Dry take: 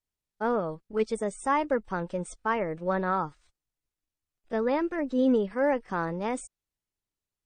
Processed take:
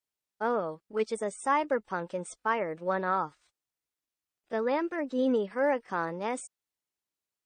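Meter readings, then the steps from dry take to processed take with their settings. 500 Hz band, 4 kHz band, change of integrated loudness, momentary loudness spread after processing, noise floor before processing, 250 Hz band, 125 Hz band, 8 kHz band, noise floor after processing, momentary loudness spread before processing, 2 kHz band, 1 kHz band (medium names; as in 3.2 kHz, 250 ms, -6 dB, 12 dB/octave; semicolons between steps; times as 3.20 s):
-1.5 dB, 0.0 dB, -2.0 dB, 7 LU, under -85 dBFS, -4.5 dB, -7.0 dB, 0.0 dB, under -85 dBFS, 8 LU, 0.0 dB, -0.5 dB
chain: high-pass 350 Hz 6 dB/octave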